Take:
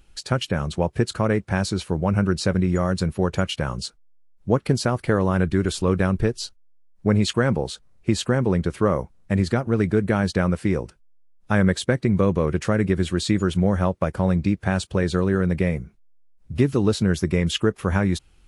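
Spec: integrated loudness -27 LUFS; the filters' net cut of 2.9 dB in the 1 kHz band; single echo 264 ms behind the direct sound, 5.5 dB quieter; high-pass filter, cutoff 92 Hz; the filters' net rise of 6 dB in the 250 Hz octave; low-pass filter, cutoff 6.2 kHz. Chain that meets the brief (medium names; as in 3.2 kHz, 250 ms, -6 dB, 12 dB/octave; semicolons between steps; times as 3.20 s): high-pass 92 Hz; low-pass 6.2 kHz; peaking EQ 250 Hz +9 dB; peaking EQ 1 kHz -4.5 dB; delay 264 ms -5.5 dB; trim -9 dB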